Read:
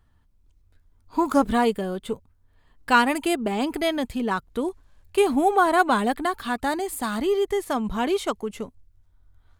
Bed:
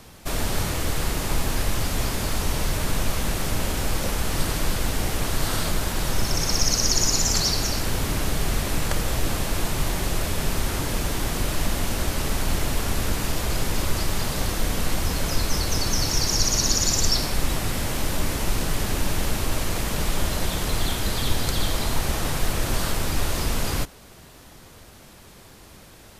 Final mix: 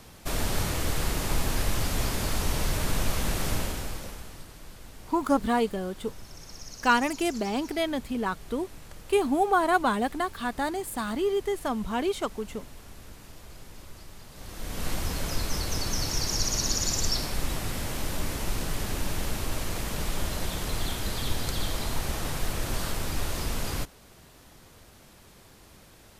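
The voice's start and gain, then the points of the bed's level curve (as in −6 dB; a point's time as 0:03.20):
3.95 s, −4.0 dB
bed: 0:03.54 −3 dB
0:04.47 −22 dB
0:14.29 −22 dB
0:14.87 −6 dB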